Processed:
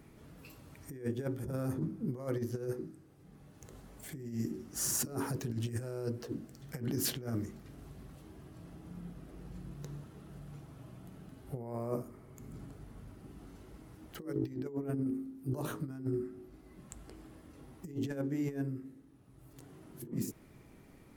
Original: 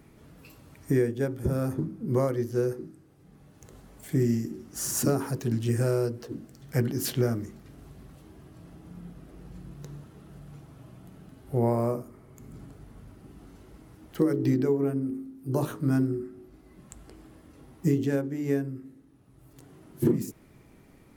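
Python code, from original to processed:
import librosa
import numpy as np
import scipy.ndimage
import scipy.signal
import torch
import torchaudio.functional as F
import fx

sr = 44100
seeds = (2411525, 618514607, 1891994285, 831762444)

y = fx.over_compress(x, sr, threshold_db=-29.0, ratio=-0.5)
y = F.gain(torch.from_numpy(y), -6.0).numpy()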